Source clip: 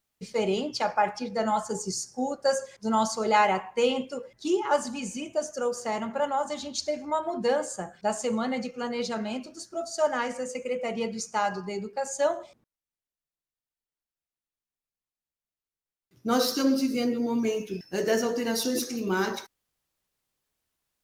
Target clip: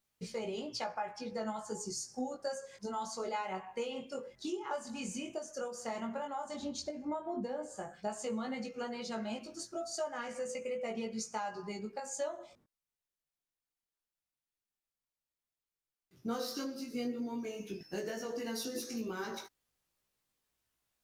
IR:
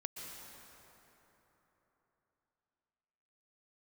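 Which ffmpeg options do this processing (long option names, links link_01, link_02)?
-filter_complex "[0:a]asettb=1/sr,asplit=3[link_01][link_02][link_03];[link_01]atrim=end=6.544[link_04];[link_02]atrim=start=6.54:end=7.76,asetpts=PTS-STARTPTS,afade=type=in:duration=0.004:curve=qsin,afade=type=out:start_time=1.216:duration=0.004:curve=qsin,tiltshelf=frequency=970:gain=6[link_05];[link_03]atrim=start=7.756[link_06];[link_04][link_05]acrossfade=duration=0.004:curve1=hsin:curve2=qsin[link_07];[link_07][link_06]acrossfade=duration=0.004:curve1=qsin:curve2=hsin,acompressor=threshold=-34dB:ratio=6,flanger=delay=17.5:depth=4.8:speed=0.1,volume=1dB"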